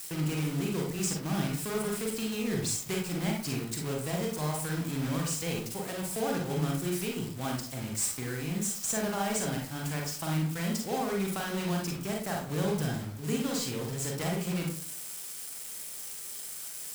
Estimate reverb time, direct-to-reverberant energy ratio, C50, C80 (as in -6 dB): 0.45 s, -0.5 dB, 3.5 dB, 9.5 dB